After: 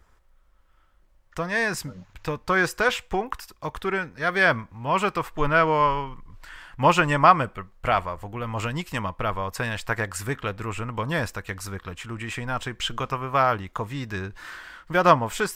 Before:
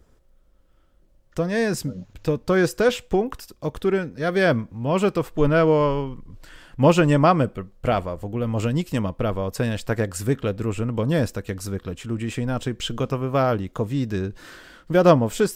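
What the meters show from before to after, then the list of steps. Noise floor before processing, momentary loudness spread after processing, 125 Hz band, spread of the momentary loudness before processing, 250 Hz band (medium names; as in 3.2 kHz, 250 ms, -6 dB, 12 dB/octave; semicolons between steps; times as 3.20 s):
-57 dBFS, 16 LU, -7.0 dB, 13 LU, -8.5 dB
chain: graphic EQ 125/250/500/1000/2000 Hz -4/-7/-6/+8/+6 dB; trim -1.5 dB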